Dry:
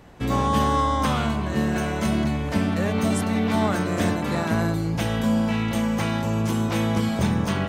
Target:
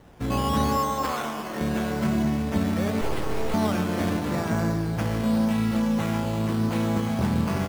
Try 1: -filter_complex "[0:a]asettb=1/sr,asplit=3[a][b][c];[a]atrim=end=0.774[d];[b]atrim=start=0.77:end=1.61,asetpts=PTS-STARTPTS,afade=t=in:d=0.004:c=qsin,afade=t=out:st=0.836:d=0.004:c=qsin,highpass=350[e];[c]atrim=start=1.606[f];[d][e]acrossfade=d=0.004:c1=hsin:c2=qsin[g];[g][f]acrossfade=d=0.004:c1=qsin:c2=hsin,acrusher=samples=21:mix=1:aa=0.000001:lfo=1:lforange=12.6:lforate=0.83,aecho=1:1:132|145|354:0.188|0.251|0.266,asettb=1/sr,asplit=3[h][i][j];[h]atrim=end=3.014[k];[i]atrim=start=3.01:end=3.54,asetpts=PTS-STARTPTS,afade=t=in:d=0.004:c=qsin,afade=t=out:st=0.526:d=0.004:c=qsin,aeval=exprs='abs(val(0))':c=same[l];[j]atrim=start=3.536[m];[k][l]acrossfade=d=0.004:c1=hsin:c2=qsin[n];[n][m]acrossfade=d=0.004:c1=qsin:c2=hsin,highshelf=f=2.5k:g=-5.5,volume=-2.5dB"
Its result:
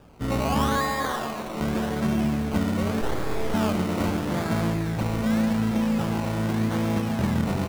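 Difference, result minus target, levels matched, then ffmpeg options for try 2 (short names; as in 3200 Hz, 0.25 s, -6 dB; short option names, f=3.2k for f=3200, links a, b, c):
decimation with a swept rate: distortion +6 dB
-filter_complex "[0:a]asettb=1/sr,asplit=3[a][b][c];[a]atrim=end=0.774[d];[b]atrim=start=0.77:end=1.61,asetpts=PTS-STARTPTS,afade=t=in:d=0.004:c=qsin,afade=t=out:st=0.836:d=0.004:c=qsin,highpass=350[e];[c]atrim=start=1.606[f];[d][e]acrossfade=d=0.004:c1=hsin:c2=qsin[g];[g][f]acrossfade=d=0.004:c1=qsin:c2=hsin,acrusher=samples=9:mix=1:aa=0.000001:lfo=1:lforange=5.4:lforate=0.83,aecho=1:1:132|145|354:0.188|0.251|0.266,asettb=1/sr,asplit=3[h][i][j];[h]atrim=end=3.014[k];[i]atrim=start=3.01:end=3.54,asetpts=PTS-STARTPTS,afade=t=in:d=0.004:c=qsin,afade=t=out:st=0.526:d=0.004:c=qsin,aeval=exprs='abs(val(0))':c=same[l];[j]atrim=start=3.536[m];[k][l]acrossfade=d=0.004:c1=hsin:c2=qsin[n];[n][m]acrossfade=d=0.004:c1=qsin:c2=hsin,highshelf=f=2.5k:g=-5.5,volume=-2.5dB"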